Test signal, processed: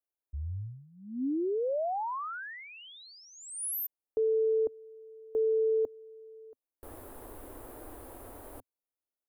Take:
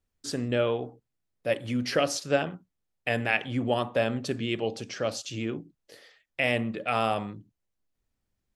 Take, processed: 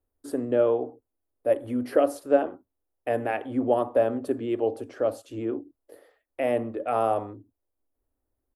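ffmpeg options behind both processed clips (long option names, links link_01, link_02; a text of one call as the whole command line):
ffmpeg -i in.wav -af "firequalizer=gain_entry='entry(100,0);entry(160,-24);entry(260,5);entry(590,5);entry(2300,-13);entry(5900,-20);entry(10000,1)':delay=0.05:min_phase=1" out.wav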